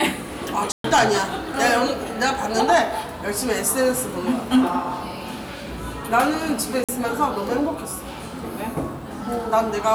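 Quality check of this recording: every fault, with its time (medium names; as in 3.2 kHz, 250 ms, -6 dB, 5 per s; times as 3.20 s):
0.72–0.84 s: dropout 123 ms
6.84–6.89 s: dropout 46 ms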